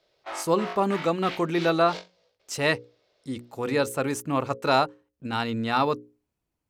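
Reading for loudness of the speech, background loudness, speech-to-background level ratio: -26.0 LUFS, -38.5 LUFS, 12.5 dB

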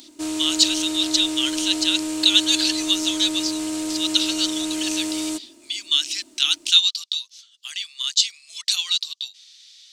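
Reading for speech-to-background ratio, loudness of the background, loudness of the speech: 6.0 dB, -26.5 LUFS, -20.5 LUFS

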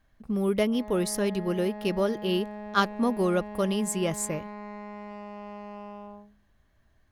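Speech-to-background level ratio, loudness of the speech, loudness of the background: 12.5 dB, -28.0 LUFS, -40.5 LUFS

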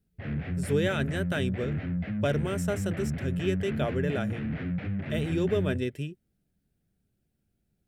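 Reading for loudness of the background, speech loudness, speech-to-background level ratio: -32.5 LUFS, -31.5 LUFS, 1.0 dB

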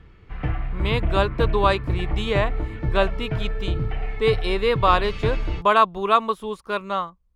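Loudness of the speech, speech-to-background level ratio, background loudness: -23.0 LUFS, 5.0 dB, -28.0 LUFS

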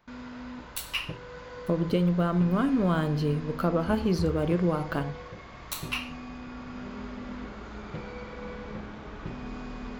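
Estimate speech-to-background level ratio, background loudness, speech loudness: 13.5 dB, -41.0 LUFS, -27.5 LUFS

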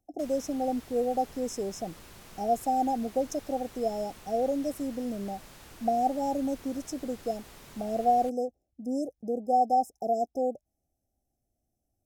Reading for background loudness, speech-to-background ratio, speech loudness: -49.5 LUFS, 19.0 dB, -30.5 LUFS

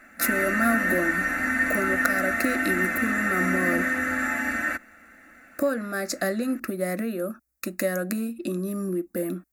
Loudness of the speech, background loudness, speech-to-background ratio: -28.5 LUFS, -24.5 LUFS, -4.0 dB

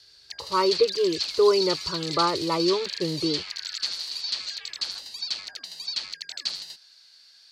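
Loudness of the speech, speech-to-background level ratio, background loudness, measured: -25.0 LUFS, 4.5 dB, -29.5 LUFS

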